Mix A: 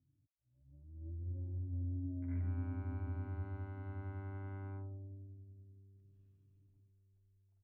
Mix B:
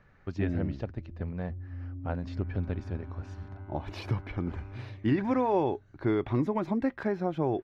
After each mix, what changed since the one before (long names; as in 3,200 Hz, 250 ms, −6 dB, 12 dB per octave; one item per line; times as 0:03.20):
speech: unmuted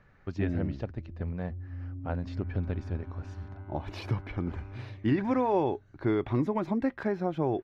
first sound: remove high-pass filter 53 Hz